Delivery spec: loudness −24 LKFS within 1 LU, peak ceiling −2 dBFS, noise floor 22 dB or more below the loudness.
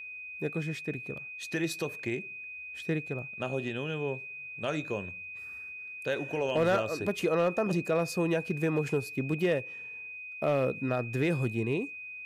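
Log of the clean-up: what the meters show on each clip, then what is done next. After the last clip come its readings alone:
share of clipped samples 0.3%; peaks flattened at −20.0 dBFS; interfering tone 2,500 Hz; level of the tone −40 dBFS; integrated loudness −32.0 LKFS; sample peak −20.0 dBFS; target loudness −24.0 LKFS
→ clipped peaks rebuilt −20 dBFS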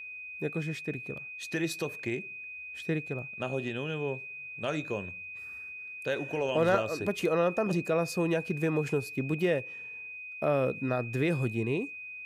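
share of clipped samples 0.0%; interfering tone 2,500 Hz; level of the tone −40 dBFS
→ notch filter 2,500 Hz, Q 30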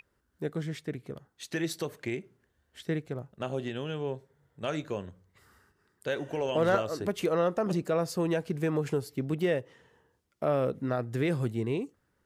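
interfering tone none found; integrated loudness −32.0 LKFS; sample peak −11.5 dBFS; target loudness −24.0 LKFS
→ level +8 dB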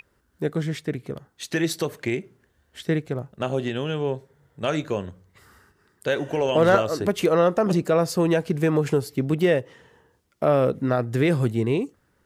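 integrated loudness −24.0 LKFS; sample peak −3.5 dBFS; background noise floor −67 dBFS

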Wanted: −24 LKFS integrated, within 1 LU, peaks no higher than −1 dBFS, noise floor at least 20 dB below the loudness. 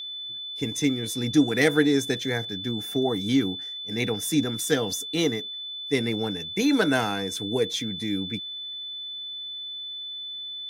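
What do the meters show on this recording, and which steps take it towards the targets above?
interfering tone 3,500 Hz; level of the tone −33 dBFS; integrated loudness −26.5 LKFS; sample peak −6.0 dBFS; target loudness −24.0 LKFS
→ notch filter 3,500 Hz, Q 30
level +2.5 dB

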